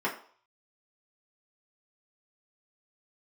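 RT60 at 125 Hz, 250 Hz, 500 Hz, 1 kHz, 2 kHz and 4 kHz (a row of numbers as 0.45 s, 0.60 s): 0.25 s, 0.35 s, 0.45 s, 0.55 s, 0.40 s, 0.45 s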